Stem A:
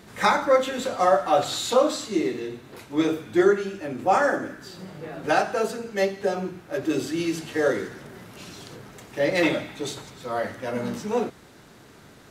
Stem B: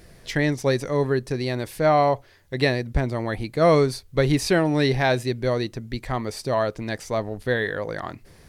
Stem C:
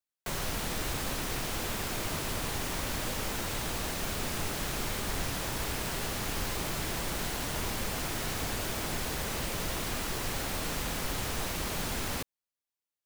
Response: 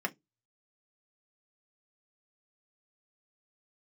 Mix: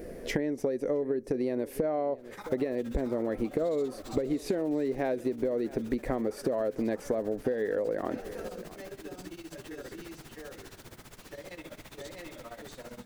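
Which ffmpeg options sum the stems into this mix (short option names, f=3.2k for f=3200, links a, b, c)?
-filter_complex "[0:a]acompressor=threshold=-25dB:ratio=6,adelay=2150,volume=-9dB,asplit=2[a][b];[b]volume=-8.5dB[c];[1:a]equalizer=f=125:t=o:w=1:g=-10,equalizer=f=250:t=o:w=1:g=10,equalizer=f=500:t=o:w=1:g=12,equalizer=f=1k:t=o:w=1:g=-5,equalizer=f=4k:t=o:w=1:g=-10,equalizer=f=8k:t=o:w=1:g=-4,acompressor=threshold=-19dB:ratio=6,volume=2.5dB,asplit=2[d][e];[e]volume=-23dB[f];[2:a]adelay=2150,volume=-14dB[g];[a][g]amix=inputs=2:normalize=0,tremolo=f=15:d=0.93,alimiter=level_in=10dB:limit=-24dB:level=0:latency=1:release=33,volume=-10dB,volume=0dB[h];[c][f]amix=inputs=2:normalize=0,aecho=0:1:665:1[i];[d][h][i]amix=inputs=3:normalize=0,acompressor=threshold=-27dB:ratio=6"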